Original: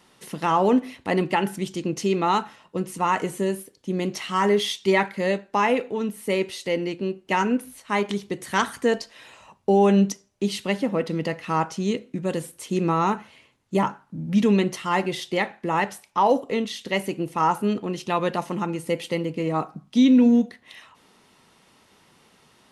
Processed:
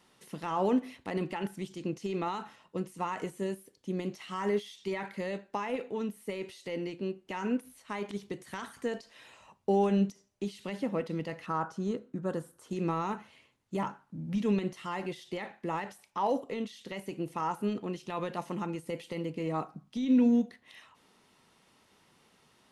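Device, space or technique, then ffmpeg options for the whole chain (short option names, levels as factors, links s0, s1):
de-esser from a sidechain: -filter_complex "[0:a]asettb=1/sr,asplit=3[s0][s1][s2];[s0]atrim=end=11.464[s3];[s1]atrim=start=11.46:end=12.71,asetpts=PTS-STARTPTS,afade=t=in:d=0.004:c=qsin,afade=t=out:st=1.246:d=0.004:c=qsin,highshelf=f=1800:t=q:w=3:g=-6.5[s4];[s2]atrim=start=12.706[s5];[s3][s4]acrossfade=d=0.004:c1=hsin:c2=qsin[s6];[s6][s5]acrossfade=d=0.004:c1=qsin:c2=hsin,asplit=2[s7][s8];[s8]highpass=5200,apad=whole_len=1001913[s9];[s7][s9]sidechaincompress=threshold=0.00447:ratio=4:attack=2.1:release=39,volume=0.422"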